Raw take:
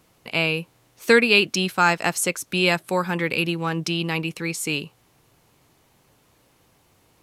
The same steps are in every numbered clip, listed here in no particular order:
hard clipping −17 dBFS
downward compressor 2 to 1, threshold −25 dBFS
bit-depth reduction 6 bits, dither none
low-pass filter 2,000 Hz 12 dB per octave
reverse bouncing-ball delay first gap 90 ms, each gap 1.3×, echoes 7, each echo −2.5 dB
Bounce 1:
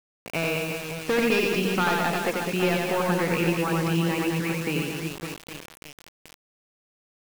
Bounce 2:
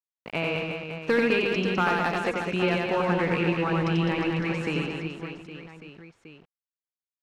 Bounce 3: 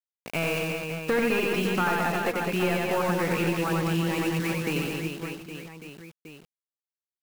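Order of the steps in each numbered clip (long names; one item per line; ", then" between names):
low-pass filter, then hard clipping, then downward compressor, then reverse bouncing-ball delay, then bit-depth reduction
downward compressor, then bit-depth reduction, then low-pass filter, then hard clipping, then reverse bouncing-ball delay
hard clipping, then low-pass filter, then bit-depth reduction, then reverse bouncing-ball delay, then downward compressor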